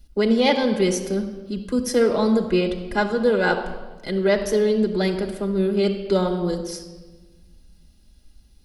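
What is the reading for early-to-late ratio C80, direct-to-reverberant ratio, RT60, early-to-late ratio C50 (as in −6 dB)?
10.5 dB, 4.0 dB, 1.2 s, 9.0 dB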